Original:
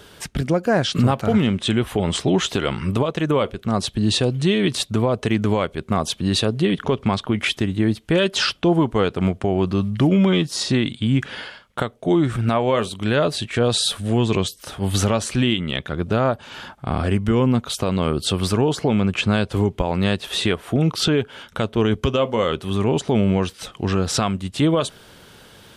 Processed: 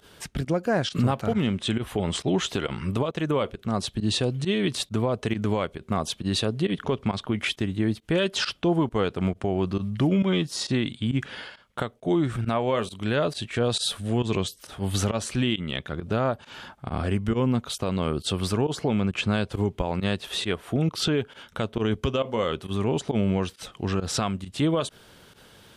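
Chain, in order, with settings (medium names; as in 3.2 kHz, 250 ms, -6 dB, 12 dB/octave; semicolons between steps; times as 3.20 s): volume shaper 135 bpm, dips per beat 1, -19 dB, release 66 ms; trim -5.5 dB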